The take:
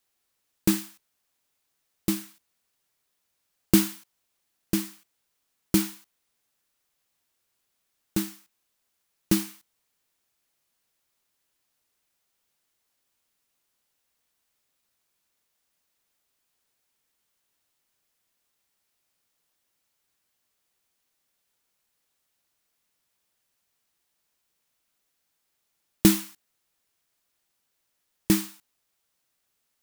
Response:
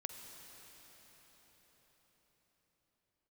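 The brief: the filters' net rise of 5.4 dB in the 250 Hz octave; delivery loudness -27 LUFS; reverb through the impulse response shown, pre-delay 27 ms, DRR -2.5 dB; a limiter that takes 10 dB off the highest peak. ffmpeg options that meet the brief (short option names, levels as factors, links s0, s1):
-filter_complex "[0:a]equalizer=f=250:t=o:g=8,alimiter=limit=0.335:level=0:latency=1,asplit=2[s0][s1];[1:a]atrim=start_sample=2205,adelay=27[s2];[s1][s2]afir=irnorm=-1:irlink=0,volume=1.68[s3];[s0][s3]amix=inputs=2:normalize=0,volume=1.12"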